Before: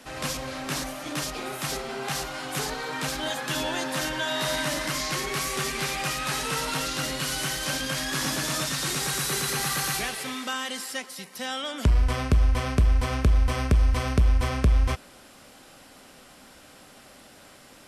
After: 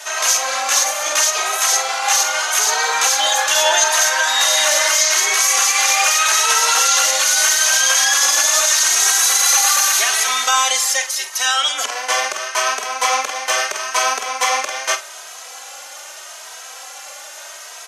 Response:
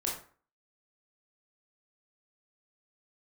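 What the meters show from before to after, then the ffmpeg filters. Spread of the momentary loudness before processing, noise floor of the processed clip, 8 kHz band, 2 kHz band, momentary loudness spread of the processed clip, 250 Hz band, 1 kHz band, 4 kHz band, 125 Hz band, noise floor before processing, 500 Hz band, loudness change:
8 LU, -36 dBFS, +19.5 dB, +13.5 dB, 21 LU, under -15 dB, +13.5 dB, +14.0 dB, under -40 dB, -51 dBFS, +7.0 dB, +13.0 dB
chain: -filter_complex "[0:a]highpass=f=630:w=0.5412,highpass=f=630:w=1.3066,equalizer=f=6.4k:t=o:w=0.24:g=14,asplit=2[a][b];[b]adelay=47,volume=-11.5dB[c];[a][c]amix=inputs=2:normalize=0,alimiter=level_in=19dB:limit=-1dB:release=50:level=0:latency=1,asplit=2[d][e];[e]adelay=2.8,afreqshift=0.8[f];[d][f]amix=inputs=2:normalize=1,volume=-1dB"

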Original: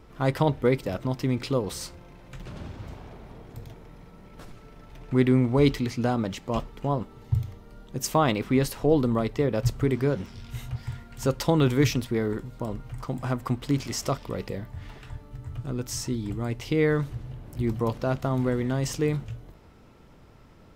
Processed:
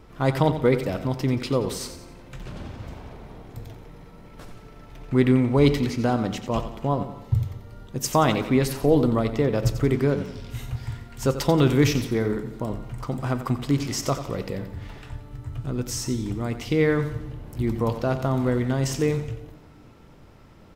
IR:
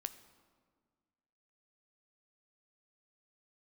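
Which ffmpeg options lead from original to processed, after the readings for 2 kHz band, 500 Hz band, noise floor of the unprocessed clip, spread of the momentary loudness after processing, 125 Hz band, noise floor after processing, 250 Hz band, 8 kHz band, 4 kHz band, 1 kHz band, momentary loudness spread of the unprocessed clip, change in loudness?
+2.5 dB, +2.5 dB, -51 dBFS, 19 LU, +2.5 dB, -49 dBFS, +2.5 dB, +2.5 dB, +2.5 dB, +3.0 dB, 19 LU, +2.5 dB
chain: -filter_complex "[0:a]aecho=1:1:89|178|267|356:0.282|0.121|0.0521|0.0224,asplit=2[a][b];[1:a]atrim=start_sample=2205[c];[b][c]afir=irnorm=-1:irlink=0,volume=5dB[d];[a][d]amix=inputs=2:normalize=0,volume=-5dB"

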